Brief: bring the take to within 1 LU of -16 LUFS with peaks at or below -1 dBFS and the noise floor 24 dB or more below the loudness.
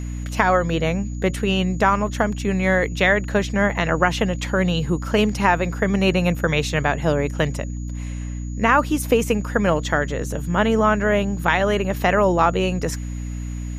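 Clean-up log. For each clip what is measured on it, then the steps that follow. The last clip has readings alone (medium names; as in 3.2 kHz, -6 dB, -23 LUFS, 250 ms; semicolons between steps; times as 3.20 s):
hum 60 Hz; highest harmonic 300 Hz; hum level -26 dBFS; steady tone 6.8 kHz; tone level -46 dBFS; loudness -20.5 LUFS; peak level -1.5 dBFS; loudness target -16.0 LUFS
-> hum notches 60/120/180/240/300 Hz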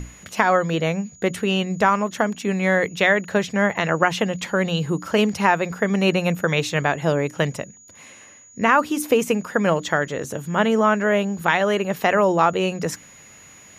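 hum not found; steady tone 6.8 kHz; tone level -46 dBFS
-> band-stop 6.8 kHz, Q 30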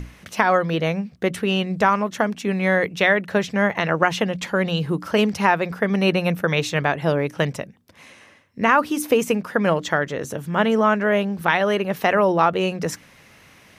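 steady tone not found; loudness -21.0 LUFS; peak level -2.0 dBFS; loudness target -16.0 LUFS
-> trim +5 dB; peak limiter -1 dBFS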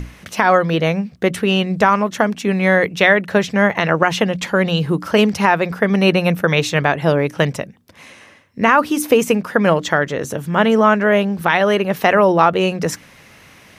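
loudness -16.0 LUFS; peak level -1.0 dBFS; noise floor -46 dBFS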